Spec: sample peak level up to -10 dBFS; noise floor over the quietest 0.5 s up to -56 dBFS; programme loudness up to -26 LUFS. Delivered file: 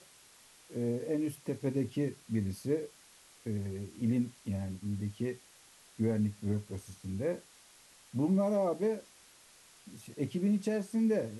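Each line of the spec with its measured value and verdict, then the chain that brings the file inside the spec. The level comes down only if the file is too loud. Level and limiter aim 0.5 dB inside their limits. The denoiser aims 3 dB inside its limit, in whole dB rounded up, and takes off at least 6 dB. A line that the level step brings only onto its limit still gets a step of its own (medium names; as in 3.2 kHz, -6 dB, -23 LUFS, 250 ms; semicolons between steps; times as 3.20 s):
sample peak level -20.0 dBFS: pass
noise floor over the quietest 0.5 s -60 dBFS: pass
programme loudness -34.5 LUFS: pass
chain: none needed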